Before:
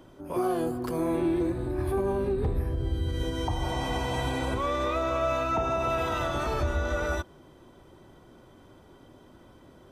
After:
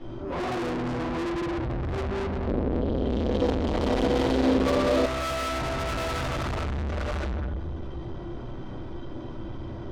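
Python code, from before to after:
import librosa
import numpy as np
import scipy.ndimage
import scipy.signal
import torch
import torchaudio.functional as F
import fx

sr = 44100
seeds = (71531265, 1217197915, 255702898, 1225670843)

y = scipy.signal.sosfilt(scipy.signal.butter(4, 5400.0, 'lowpass', fs=sr, output='sos'), x)
y = fx.low_shelf(y, sr, hz=190.0, db=7.0)
y = fx.room_shoebox(y, sr, seeds[0], volume_m3=230.0, walls='mixed', distance_m=4.1)
y = fx.rider(y, sr, range_db=10, speed_s=0.5)
y = 10.0 ** (-25.5 / 20.0) * np.tanh(y / 10.0 ** (-25.5 / 20.0))
y = fx.graphic_eq(y, sr, hz=(125, 250, 500, 4000), db=(-4, 9, 10, 4), at=(2.47, 5.06))
y = y * 10.0 ** (-2.5 / 20.0)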